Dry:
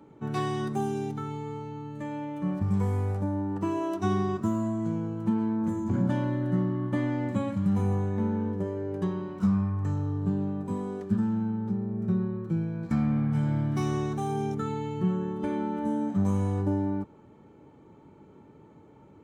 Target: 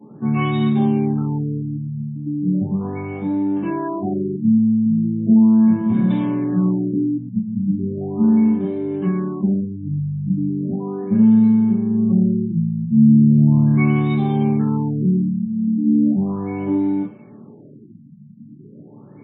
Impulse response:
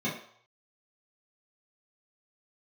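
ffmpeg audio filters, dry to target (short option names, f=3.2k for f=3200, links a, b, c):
-filter_complex "[0:a]asplit=2[a][b];[b]acompressor=threshold=-38dB:ratio=10,volume=-1.5dB[c];[a][c]amix=inputs=2:normalize=0,crystalizer=i=8.5:c=0,aeval=exprs='(tanh(8.91*val(0)+0.4)-tanh(0.4))/8.91':c=same[d];[1:a]atrim=start_sample=2205[e];[d][e]afir=irnorm=-1:irlink=0,afftfilt=real='re*lt(b*sr/1024,240*pow(4000/240,0.5+0.5*sin(2*PI*0.37*pts/sr)))':imag='im*lt(b*sr/1024,240*pow(4000/240,0.5+0.5*sin(2*PI*0.37*pts/sr)))':win_size=1024:overlap=0.75,volume=-7dB"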